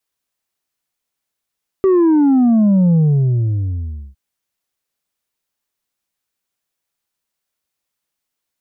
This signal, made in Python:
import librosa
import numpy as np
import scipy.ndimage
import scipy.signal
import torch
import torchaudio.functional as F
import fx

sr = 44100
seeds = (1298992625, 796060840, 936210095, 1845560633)

y = fx.sub_drop(sr, level_db=-9.5, start_hz=390.0, length_s=2.31, drive_db=3.5, fade_s=1.2, end_hz=65.0)